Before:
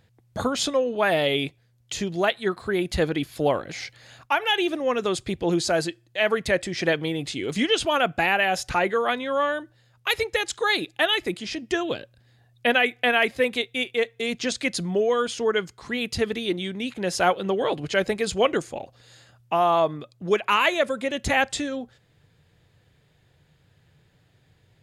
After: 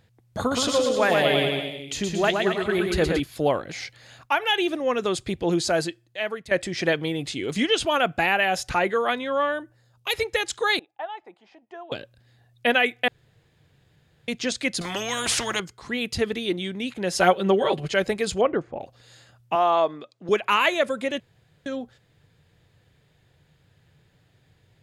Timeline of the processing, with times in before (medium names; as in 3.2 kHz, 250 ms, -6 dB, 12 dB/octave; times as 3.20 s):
0.39–3.20 s: bouncing-ball echo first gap 120 ms, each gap 0.9×, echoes 6
5.82–6.51 s: fade out linear, to -15.5 dB
9.28–10.12 s: peaking EQ 11 kHz -> 1.4 kHz -11.5 dB
10.79–11.92 s: band-pass filter 830 Hz, Q 5.4
13.08–14.28 s: room tone
14.81–15.60 s: spectrum-flattening compressor 4:1
17.15–17.90 s: comb 5.2 ms, depth 87%
18.41–18.81 s: low-pass 1.4 kHz
19.55–20.29 s: band-pass 280–6900 Hz
21.20–21.66 s: room tone